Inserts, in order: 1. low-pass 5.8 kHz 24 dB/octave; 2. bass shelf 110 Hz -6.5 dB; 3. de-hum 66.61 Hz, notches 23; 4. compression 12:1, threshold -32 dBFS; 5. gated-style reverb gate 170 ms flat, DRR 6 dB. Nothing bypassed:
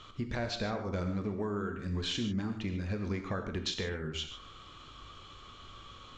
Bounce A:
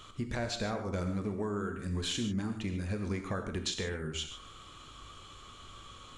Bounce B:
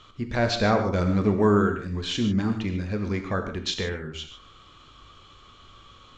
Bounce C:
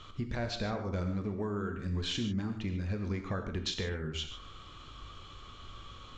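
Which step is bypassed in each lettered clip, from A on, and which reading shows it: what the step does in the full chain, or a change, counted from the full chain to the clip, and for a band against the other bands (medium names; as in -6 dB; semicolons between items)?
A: 1, 8 kHz band +6.0 dB; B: 4, mean gain reduction 5.5 dB; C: 2, 125 Hz band +2.0 dB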